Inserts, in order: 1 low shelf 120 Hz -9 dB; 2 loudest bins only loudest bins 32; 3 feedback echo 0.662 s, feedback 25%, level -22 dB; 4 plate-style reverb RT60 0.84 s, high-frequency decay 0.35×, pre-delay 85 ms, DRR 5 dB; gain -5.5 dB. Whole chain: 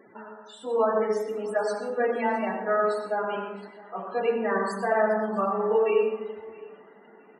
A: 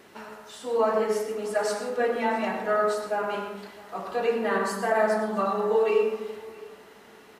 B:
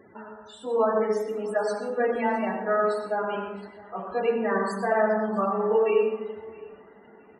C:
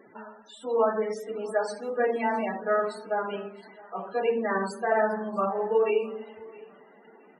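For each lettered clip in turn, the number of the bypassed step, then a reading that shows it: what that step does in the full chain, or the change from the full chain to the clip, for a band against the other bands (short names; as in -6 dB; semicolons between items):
2, 4 kHz band +5.5 dB; 1, 250 Hz band +2.0 dB; 4, loudness change -1.5 LU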